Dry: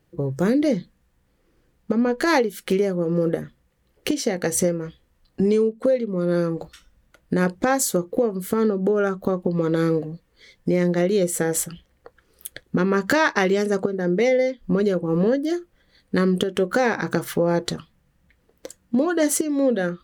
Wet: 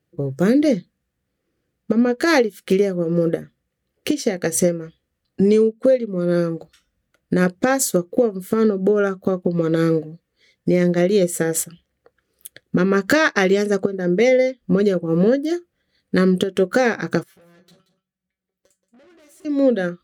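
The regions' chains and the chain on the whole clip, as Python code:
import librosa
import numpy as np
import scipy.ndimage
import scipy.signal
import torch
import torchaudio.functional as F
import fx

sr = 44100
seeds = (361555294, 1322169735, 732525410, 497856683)

y = fx.chain(x, sr, fx.comb_fb(f0_hz=190.0, decay_s=0.18, harmonics='all', damping=0.0, mix_pct=90),
    fx.tube_stage(drive_db=42.0, bias=0.65),
    fx.echo_single(ms=179, db=-13.5), at=(17.23, 19.45))
y = scipy.signal.sosfilt(scipy.signal.butter(2, 71.0, 'highpass', fs=sr, output='sos'), y)
y = fx.peak_eq(y, sr, hz=940.0, db=-9.5, octaves=0.36)
y = fx.upward_expand(y, sr, threshold_db=-41.0, expansion=1.5)
y = y * 10.0 ** (5.0 / 20.0)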